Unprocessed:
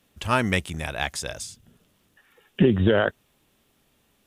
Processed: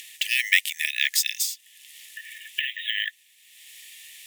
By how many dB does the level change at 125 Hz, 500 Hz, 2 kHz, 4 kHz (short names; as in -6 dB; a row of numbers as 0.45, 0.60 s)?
under -40 dB, under -40 dB, +5.0 dB, +8.5 dB